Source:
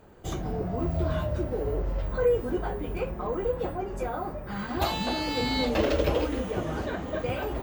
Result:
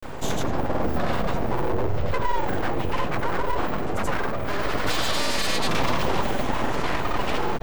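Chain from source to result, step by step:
mains-hum notches 60/120/180/240 Hz
in parallel at +2 dB: brickwall limiter −22.5 dBFS, peak gain reduction 10 dB
on the sum: granular cloud, pitch spread up and down by 0 semitones
full-wave rectification
envelope flattener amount 50%

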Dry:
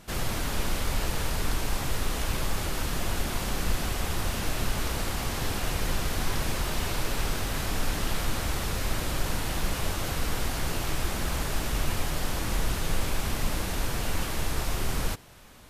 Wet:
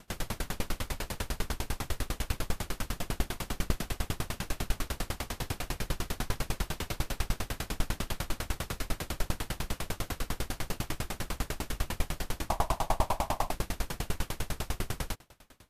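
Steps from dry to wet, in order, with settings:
0:12.49–0:13.51: flat-topped bell 810 Hz +15 dB 1.1 octaves
tremolo with a ramp in dB decaying 10 Hz, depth 33 dB
level +2.5 dB

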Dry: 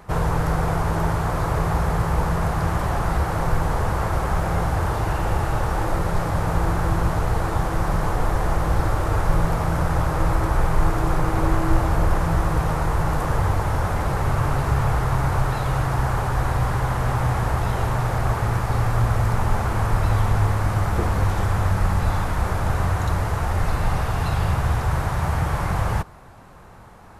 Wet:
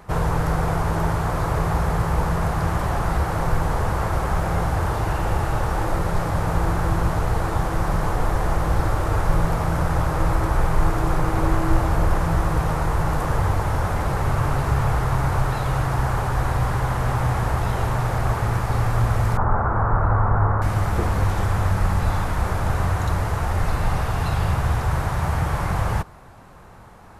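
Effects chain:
0:19.37–0:20.62: drawn EQ curve 280 Hz 0 dB, 1,400 Hz +6 dB, 3,100 Hz −27 dB

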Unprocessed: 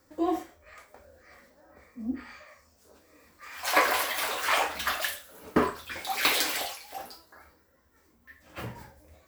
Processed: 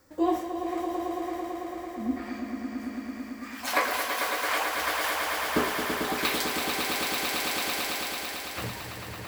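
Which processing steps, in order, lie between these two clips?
echo that builds up and dies away 111 ms, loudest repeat 5, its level −7 dB
speech leveller within 4 dB 0.5 s
level −1.5 dB

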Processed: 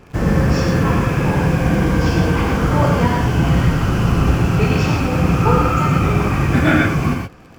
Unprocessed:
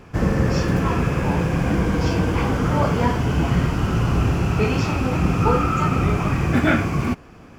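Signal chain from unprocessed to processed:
in parallel at −8.5 dB: bit reduction 6 bits
on the sum: reverb whose tail is shaped and stops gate 150 ms rising, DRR 1.5 dB
level −1 dB

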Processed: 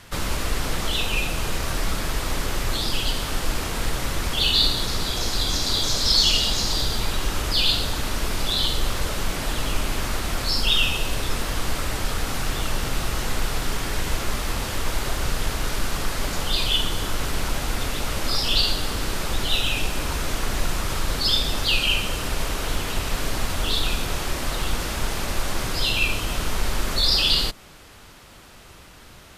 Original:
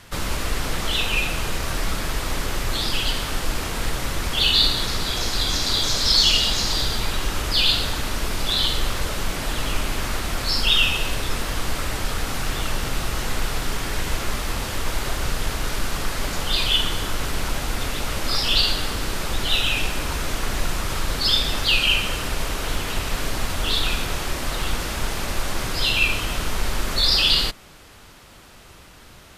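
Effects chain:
dynamic equaliser 2,000 Hz, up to −4 dB, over −31 dBFS, Q 0.78

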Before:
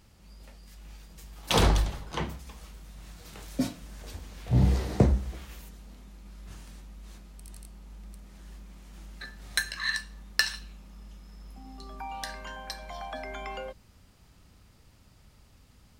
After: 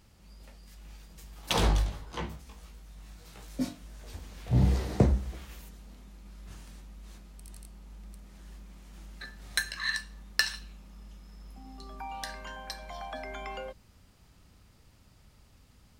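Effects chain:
0:01.53–0:04.13: chorus effect 1.6 Hz, delay 16.5 ms, depth 3.8 ms
level −1.5 dB

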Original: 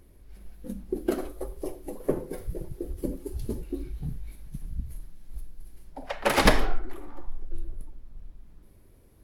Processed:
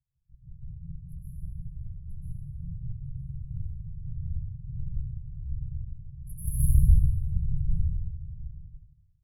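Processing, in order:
low-pass that shuts in the quiet parts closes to 450 Hz, open at −18.5 dBFS
parametric band 72 Hz −7.5 dB 1.1 octaves
noise gate with hold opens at −43 dBFS
random phases in short frames
linear-phase brick-wall band-stop 160–10,000 Hz
dense smooth reverb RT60 1 s, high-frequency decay 0.95×, pre-delay 115 ms, DRR −9.5 dB
level −6 dB

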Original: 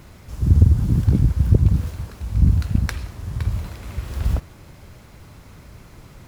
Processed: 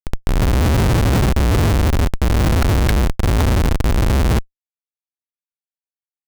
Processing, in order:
turntable start at the beginning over 0.66 s
comparator with hysteresis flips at −28.5 dBFS
level +6 dB

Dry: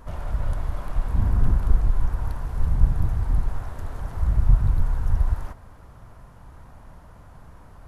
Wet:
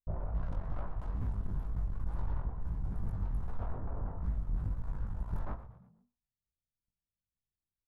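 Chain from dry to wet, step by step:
adaptive Wiener filter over 15 samples
low-pass that shuts in the quiet parts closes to 310 Hz, open at −15.5 dBFS
noise gate −35 dBFS, range −54 dB
reversed playback
downward compressor, threshold −29 dBFS, peak gain reduction 18.5 dB
reversed playback
soft clipping −31.5 dBFS, distortion −12 dB
chorus effect 2.3 Hz, delay 17.5 ms, depth 3.9 ms
echo with shifted repeats 119 ms, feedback 43%, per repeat −61 Hz, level −14 dB
on a send at −12.5 dB: convolution reverb RT60 0.55 s, pre-delay 3 ms
on the sum: wow of a warped record 78 rpm, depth 160 cents
level +5.5 dB

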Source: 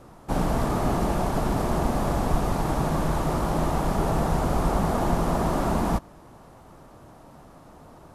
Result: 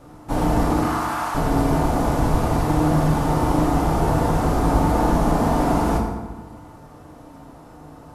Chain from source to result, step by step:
0:00.82–0:01.35: high-pass with resonance 1,200 Hz, resonance Q 2.1
feedback delay network reverb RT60 1.3 s, low-frequency decay 1.2×, high-frequency decay 0.6×, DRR −2 dB

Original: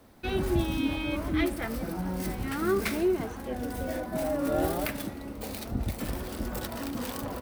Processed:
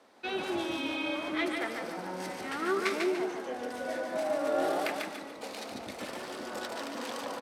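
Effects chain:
band-pass filter 440–6,800 Hz
on a send: repeating echo 146 ms, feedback 36%, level −4 dB

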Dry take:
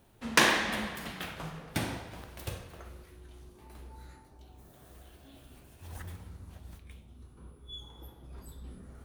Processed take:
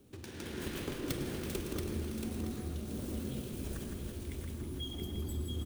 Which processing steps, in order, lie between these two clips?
running median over 3 samples
downward compressor 6 to 1, threshold −49 dBFS, peak gain reduction 28 dB
frequency shifter −140 Hz
spectral tilt +4.5 dB per octave
mains-hum notches 50/100/150 Hz
repeating echo 264 ms, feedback 57%, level −6 dB
tempo change 1.6×
drawn EQ curve 370 Hz 0 dB, 700 Hz −23 dB, 1,900 Hz −27 dB
on a send at −11 dB: convolution reverb RT60 0.35 s, pre-delay 100 ms
on the sum: automatic gain control gain up to 11.5 dB
feedback echo at a low word length 679 ms, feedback 35%, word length 12 bits, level −4.5 dB
level +17 dB

